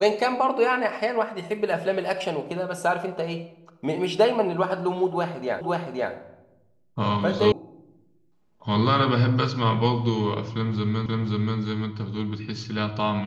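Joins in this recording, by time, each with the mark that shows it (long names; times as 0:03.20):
0:05.61: the same again, the last 0.52 s
0:07.52: cut off before it has died away
0:11.06: the same again, the last 0.53 s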